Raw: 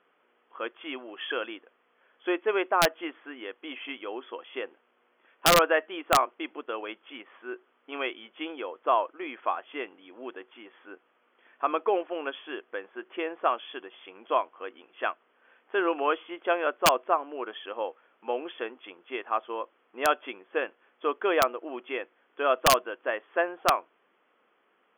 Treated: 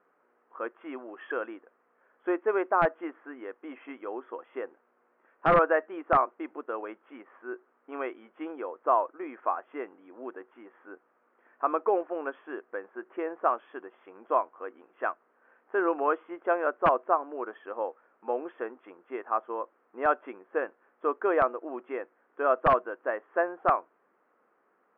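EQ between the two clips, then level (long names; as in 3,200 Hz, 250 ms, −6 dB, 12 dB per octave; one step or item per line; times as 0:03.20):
low-pass filter 1,700 Hz 24 dB per octave
0.0 dB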